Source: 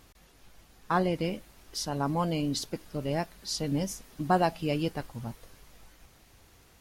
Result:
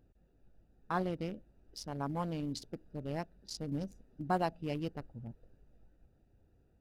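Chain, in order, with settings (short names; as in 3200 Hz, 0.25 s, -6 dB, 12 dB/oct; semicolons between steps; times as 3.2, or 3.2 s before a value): Wiener smoothing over 41 samples; gain -7 dB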